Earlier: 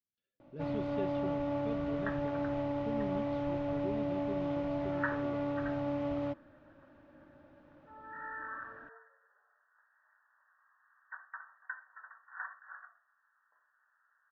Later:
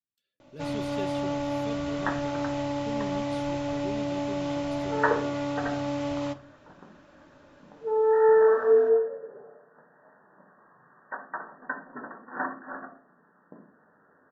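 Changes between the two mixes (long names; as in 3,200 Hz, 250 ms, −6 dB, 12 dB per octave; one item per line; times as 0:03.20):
first sound: send on
second sound: remove high-pass filter 1,400 Hz 24 dB per octave
master: remove head-to-tape spacing loss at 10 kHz 37 dB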